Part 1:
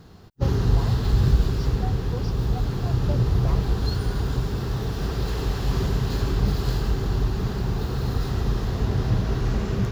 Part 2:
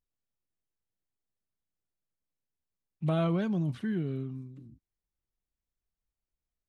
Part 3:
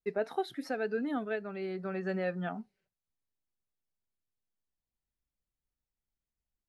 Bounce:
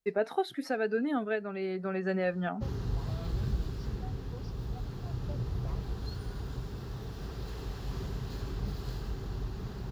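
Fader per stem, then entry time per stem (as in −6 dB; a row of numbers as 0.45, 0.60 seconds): −13.5, −17.5, +3.0 decibels; 2.20, 0.00, 0.00 seconds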